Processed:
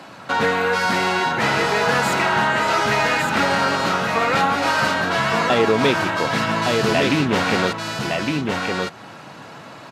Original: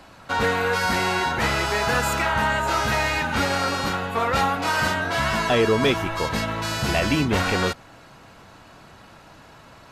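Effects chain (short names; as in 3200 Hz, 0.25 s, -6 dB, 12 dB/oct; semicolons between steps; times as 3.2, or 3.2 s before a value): high shelf 8700 Hz -7 dB; echo 1.162 s -4.5 dB; in parallel at +1.5 dB: compressor, threshold -33 dBFS, peak gain reduction 17 dB; on the sum: HPF 120 Hz 24 dB/oct; maximiser +5.5 dB; Doppler distortion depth 0.16 ms; gain -4.5 dB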